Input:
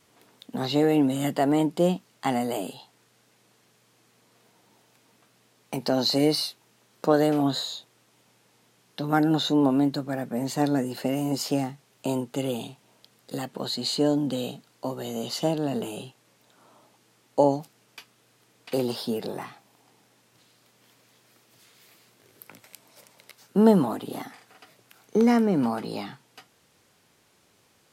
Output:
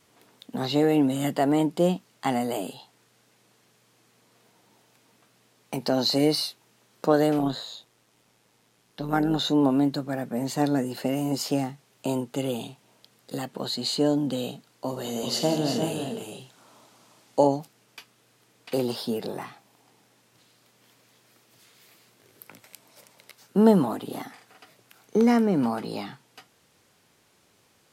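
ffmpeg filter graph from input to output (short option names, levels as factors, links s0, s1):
-filter_complex "[0:a]asettb=1/sr,asplit=3[s0][s1][s2];[s0]atrim=end=7.394[s3];[s1]atrim=start=7.39:end=9.39,asetpts=PTS-STARTPTS,afade=t=in:d=0.004:c=qsin,afade=t=out:st=1.996:d=0.004:c=qsin,acrossover=split=3400[s4][s5];[s5]acompressor=threshold=0.0112:ratio=4:attack=1:release=60[s6];[s4][s6]amix=inputs=2:normalize=0,tremolo=f=110:d=0.462[s7];[s2]atrim=start=9.386[s8];[s3][s7]acrossfade=d=0.004:c1=hsin:c2=qsin[s9];[s9][s8]acrossfade=d=0.004:c1=qsin:c2=hsin,asettb=1/sr,asplit=3[s10][s11][s12];[s10]atrim=end=14.884[s13];[s11]atrim=start=14.88:end=17.47,asetpts=PTS-STARTPTS,afade=t=in:d=0.004:c=qsin,afade=t=out:st=2.586:d=0.004:c=qsin,equalizer=f=6000:w=0.55:g=4,aecho=1:1:46|84|174|349|387:0.282|0.299|0.237|0.473|0.355,atrim=end_sample=114219[s14];[s12]atrim=start=17.466[s15];[s13][s14]acrossfade=d=0.004:c1=hsin:c2=qsin[s16];[s16][s15]acrossfade=d=0.004:c1=qsin:c2=hsin"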